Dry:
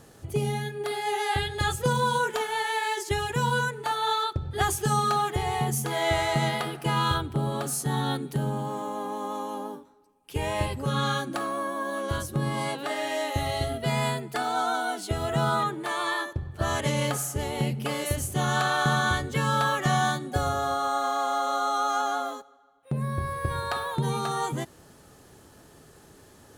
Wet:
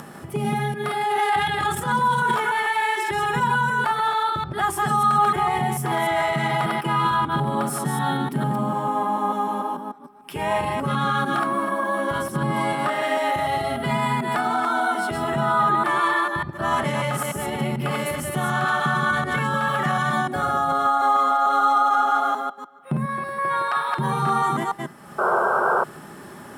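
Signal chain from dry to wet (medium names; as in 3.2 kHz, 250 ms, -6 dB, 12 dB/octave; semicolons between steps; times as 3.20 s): chunks repeated in reverse 148 ms, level -3 dB; 23.05–23.99 s: frequency weighting A; peak limiter -19.5 dBFS, peak gain reduction 9.5 dB; 1.01–2.45 s: transient shaper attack -8 dB, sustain +10 dB; peaking EQ 450 Hz -8 dB 0.64 oct; de-hum 399.8 Hz, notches 14; reverberation, pre-delay 3 ms, DRR 11.5 dB; upward compressor, threshold -32 dBFS; 25.18–25.84 s: painted sound noise 350–1600 Hz -20 dBFS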